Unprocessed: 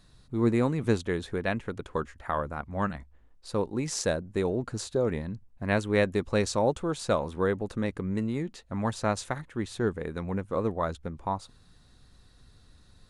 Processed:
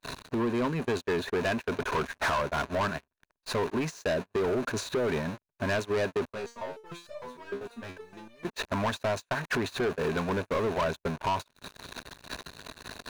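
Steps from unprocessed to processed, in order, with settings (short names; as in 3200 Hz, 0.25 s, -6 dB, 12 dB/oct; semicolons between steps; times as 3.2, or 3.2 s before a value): zero-crossing step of -34.5 dBFS; ripple EQ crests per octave 1.5, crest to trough 7 dB; vibrato 0.33 Hz 22 cents; compressor 6:1, threshold -35 dBFS, peak gain reduction 16 dB; overdrive pedal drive 16 dB, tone 1900 Hz, clips at -22.5 dBFS; gate -37 dBFS, range -35 dB; low shelf 140 Hz -5.5 dB; sample leveller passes 3; 6.31–8.45 stepped resonator 6.6 Hz 67–600 Hz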